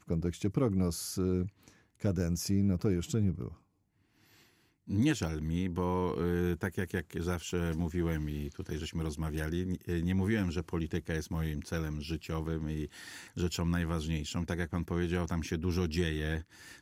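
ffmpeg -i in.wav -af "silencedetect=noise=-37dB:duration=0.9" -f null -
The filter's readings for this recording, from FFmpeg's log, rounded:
silence_start: 3.48
silence_end: 4.90 | silence_duration: 1.42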